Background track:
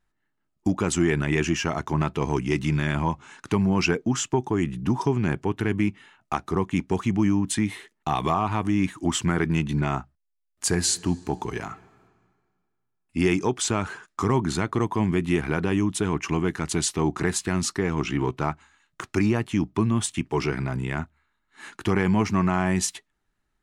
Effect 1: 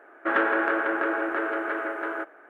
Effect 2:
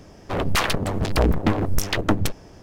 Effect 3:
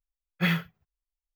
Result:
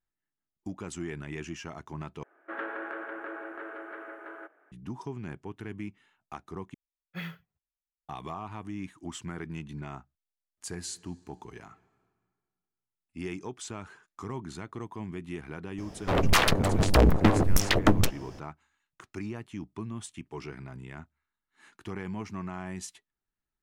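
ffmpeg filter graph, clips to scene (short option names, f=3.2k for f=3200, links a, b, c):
-filter_complex "[0:a]volume=-15dB,asplit=3[a][b][c];[a]atrim=end=2.234[d];[1:a]atrim=end=2.49,asetpts=PTS-STARTPTS,volume=-13.5dB[e];[b]atrim=start=4.716:end=6.744[f];[3:a]atrim=end=1.35,asetpts=PTS-STARTPTS,volume=-13.5dB[g];[c]atrim=start=8.086[h];[2:a]atrim=end=2.62,asetpts=PTS-STARTPTS,volume=-0.5dB,afade=t=in:d=0.004:c=hsin,afade=t=out:st=2.616:d=0.004:c=hsin,adelay=15780[i];[d][e]acrossfade=d=0.004:c1=hsin:c2=hsin[j];[j][f]acrossfade=d=0.004:c1=hsin:c2=hsin[k];[k][g]acrossfade=d=0.004:c1=hsin:c2=hsin[l];[l][h]acrossfade=d=0.004:c1=hsin:c2=hsin[m];[m][i]amix=inputs=2:normalize=0"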